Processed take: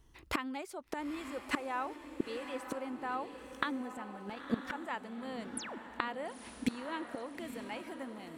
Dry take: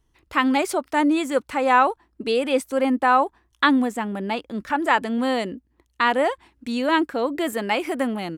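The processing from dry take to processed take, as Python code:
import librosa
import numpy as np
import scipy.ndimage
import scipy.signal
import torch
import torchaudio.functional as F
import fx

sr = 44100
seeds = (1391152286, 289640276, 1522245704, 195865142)

y = fx.spec_paint(x, sr, seeds[0], shape='fall', start_s=5.57, length_s=0.21, low_hz=200.0, high_hz=11000.0, level_db=-24.0)
y = fx.gate_flip(y, sr, shuts_db=-22.0, range_db=-24)
y = fx.echo_diffused(y, sr, ms=923, feedback_pct=44, wet_db=-9)
y = F.gain(torch.from_numpy(y), 3.5).numpy()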